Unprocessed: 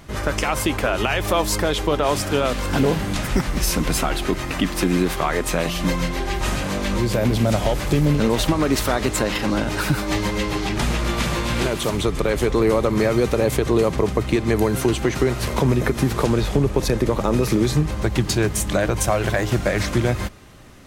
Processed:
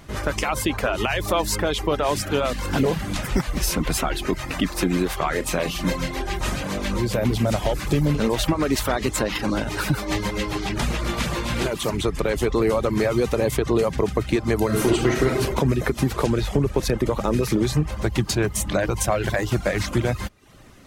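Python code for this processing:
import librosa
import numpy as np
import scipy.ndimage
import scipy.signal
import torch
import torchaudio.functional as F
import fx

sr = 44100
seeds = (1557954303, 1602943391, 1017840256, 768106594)

y = fx.room_flutter(x, sr, wall_m=6.5, rt60_s=0.25, at=(5.28, 6.22))
y = fx.reverb_throw(y, sr, start_s=14.65, length_s=0.76, rt60_s=0.92, drr_db=-1.5)
y = fx.dereverb_blind(y, sr, rt60_s=0.51)
y = F.gain(torch.from_numpy(y), -1.5).numpy()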